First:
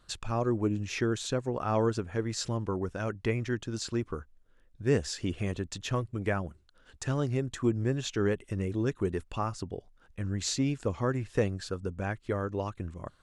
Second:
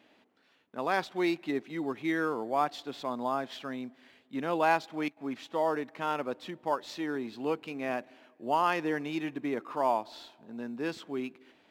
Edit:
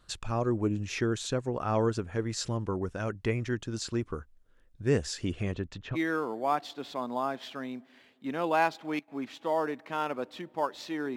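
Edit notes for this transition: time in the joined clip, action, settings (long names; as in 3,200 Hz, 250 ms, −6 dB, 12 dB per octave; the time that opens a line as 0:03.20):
first
0:05.32–0:05.97: low-pass filter 9,700 Hz → 1,500 Hz
0:05.94: continue with second from 0:02.03, crossfade 0.06 s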